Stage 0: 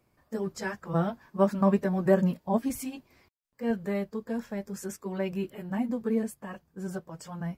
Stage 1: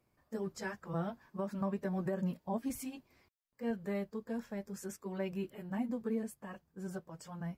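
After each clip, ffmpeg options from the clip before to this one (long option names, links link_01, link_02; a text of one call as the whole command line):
ffmpeg -i in.wav -af "alimiter=limit=-20.5dB:level=0:latency=1:release=158,volume=-6.5dB" out.wav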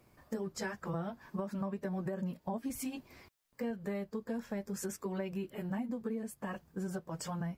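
ffmpeg -i in.wav -af "acompressor=threshold=-47dB:ratio=6,volume=11.5dB" out.wav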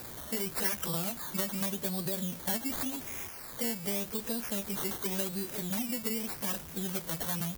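ffmpeg -i in.wav -af "aeval=exprs='val(0)+0.5*0.0075*sgn(val(0))':channel_layout=same,acrusher=samples=14:mix=1:aa=0.000001:lfo=1:lforange=8.4:lforate=0.87,aemphasis=mode=production:type=75fm" out.wav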